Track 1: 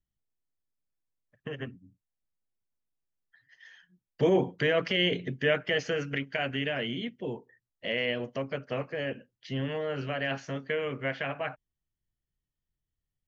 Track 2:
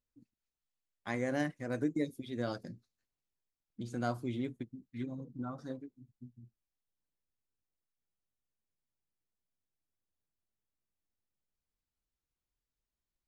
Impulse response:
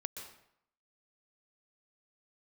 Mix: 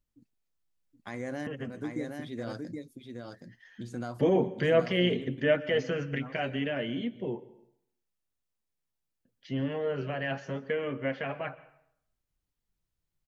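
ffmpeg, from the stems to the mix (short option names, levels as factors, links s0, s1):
-filter_complex "[0:a]tiltshelf=f=1300:g=4,flanger=delay=3.3:depth=2.8:regen=54:speed=0.73:shape=sinusoidal,volume=0.944,asplit=3[s0][s1][s2];[s0]atrim=end=7.47,asetpts=PTS-STARTPTS,afade=t=out:st=7.466:d=0.004:c=hsin[s3];[s1]atrim=start=7.47:end=9.25,asetpts=PTS-STARTPTS,volume=0[s4];[s2]atrim=start=9.25,asetpts=PTS-STARTPTS,afade=t=in:d=0.004:c=hsin[s5];[s3][s4][s5]concat=n=3:v=0:a=1,asplit=3[s6][s7][s8];[s7]volume=0.376[s9];[1:a]alimiter=level_in=1.33:limit=0.0631:level=0:latency=1:release=143,volume=0.75,volume=1.12,asplit=2[s10][s11];[s11]volume=0.596[s12];[s8]apad=whole_len=585306[s13];[s10][s13]sidechaincompress=threshold=0.00562:ratio=8:attack=7:release=225[s14];[2:a]atrim=start_sample=2205[s15];[s9][s15]afir=irnorm=-1:irlink=0[s16];[s12]aecho=0:1:772:1[s17];[s6][s14][s16][s17]amix=inputs=4:normalize=0"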